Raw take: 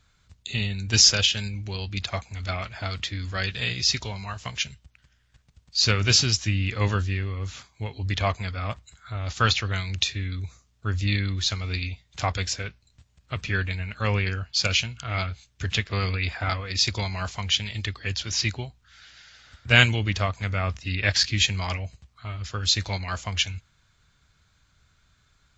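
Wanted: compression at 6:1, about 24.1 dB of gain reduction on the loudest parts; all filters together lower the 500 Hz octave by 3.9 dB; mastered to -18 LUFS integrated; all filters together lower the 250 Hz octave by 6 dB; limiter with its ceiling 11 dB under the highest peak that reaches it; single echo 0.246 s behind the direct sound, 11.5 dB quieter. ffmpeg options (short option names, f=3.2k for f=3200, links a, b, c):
-af "equalizer=f=250:t=o:g=-8,equalizer=f=500:t=o:g=-3,acompressor=threshold=-39dB:ratio=6,alimiter=level_in=6.5dB:limit=-24dB:level=0:latency=1,volume=-6.5dB,aecho=1:1:246:0.266,volume=24.5dB"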